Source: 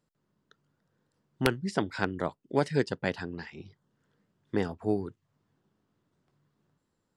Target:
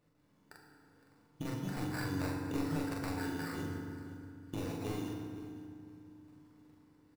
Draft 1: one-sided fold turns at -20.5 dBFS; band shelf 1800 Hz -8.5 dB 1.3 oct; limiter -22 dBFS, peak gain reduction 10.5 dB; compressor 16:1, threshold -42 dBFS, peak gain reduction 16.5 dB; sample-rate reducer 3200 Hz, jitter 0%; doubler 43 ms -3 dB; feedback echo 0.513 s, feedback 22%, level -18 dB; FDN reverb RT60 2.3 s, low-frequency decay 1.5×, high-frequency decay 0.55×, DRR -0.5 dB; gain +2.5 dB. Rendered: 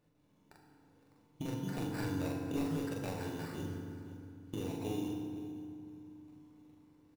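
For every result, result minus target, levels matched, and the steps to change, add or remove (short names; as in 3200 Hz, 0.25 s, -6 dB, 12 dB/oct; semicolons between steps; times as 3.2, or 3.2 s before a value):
one-sided fold: distortion -9 dB; 2000 Hz band -4.0 dB
change: one-sided fold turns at -27.5 dBFS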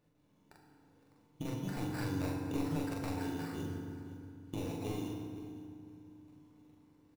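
2000 Hz band -4.0 dB
remove: band shelf 1800 Hz -8.5 dB 1.3 oct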